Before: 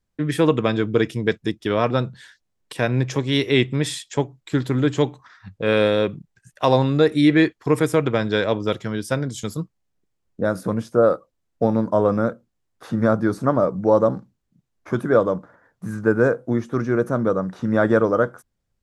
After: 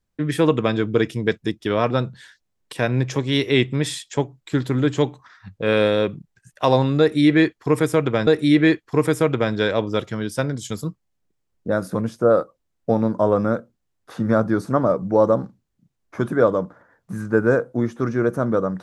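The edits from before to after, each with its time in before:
7.00–8.27 s: loop, 2 plays

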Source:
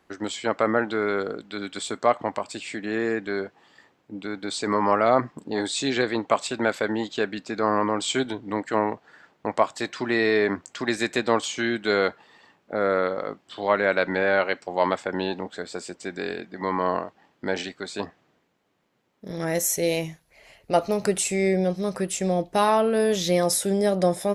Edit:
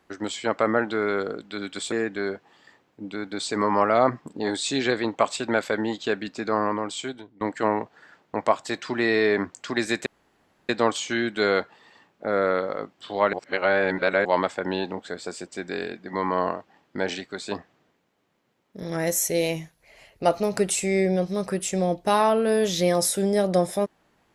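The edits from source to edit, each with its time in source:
1.92–3.03 s: delete
7.55–8.52 s: fade out, to -22.5 dB
11.17 s: insert room tone 0.63 s
13.81–14.73 s: reverse

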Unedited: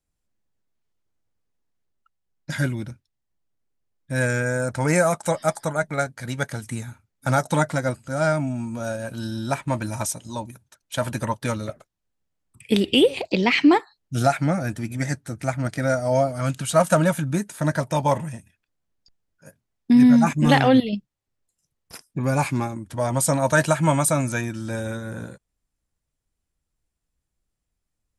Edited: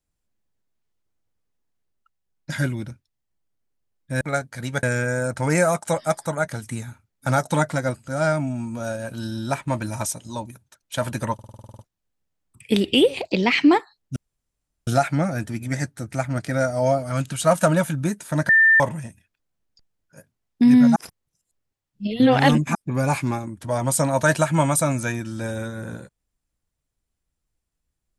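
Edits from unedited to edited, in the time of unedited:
5.86–6.48 s: move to 4.21 s
11.34 s: stutter in place 0.05 s, 10 plays
14.16 s: insert room tone 0.71 s
17.78–18.09 s: bleep 1.79 kHz -11 dBFS
20.25–22.04 s: reverse

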